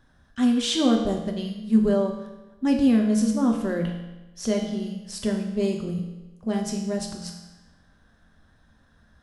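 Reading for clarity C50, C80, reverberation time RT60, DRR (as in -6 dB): 5.5 dB, 7.0 dB, 1.1 s, 1.5 dB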